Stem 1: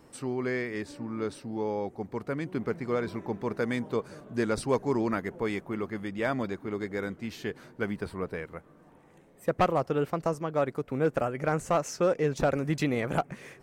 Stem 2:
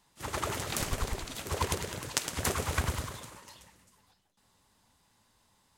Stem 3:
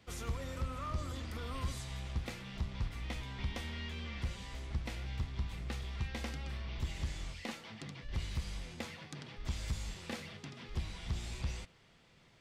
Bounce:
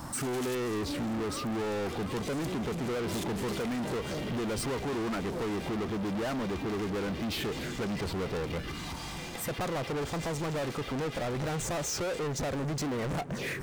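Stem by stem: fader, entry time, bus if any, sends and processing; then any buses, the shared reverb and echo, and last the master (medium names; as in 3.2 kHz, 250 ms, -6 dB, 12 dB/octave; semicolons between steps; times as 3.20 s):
+1.5 dB, 0.00 s, bus A, no send, touch-sensitive phaser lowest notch 390 Hz, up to 2.9 kHz, full sweep at -29.5 dBFS
-10.0 dB, 0.00 s, bus A, no send, inverse Chebyshev high-pass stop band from 570 Hz, stop band 60 dB; level rider gain up to 14 dB; inverted gate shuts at -18 dBFS, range -28 dB
-3.0 dB, 0.55 s, no bus, no send, high-pass 330 Hz 6 dB/octave; comb 2.5 ms; compression, threshold -53 dBFS, peak gain reduction 16 dB
bus A: 0.0 dB, compression 4:1, threshold -35 dBFS, peak gain reduction 13.5 dB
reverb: none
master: hard clipper -30 dBFS, distortion -20 dB; waveshaping leveller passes 5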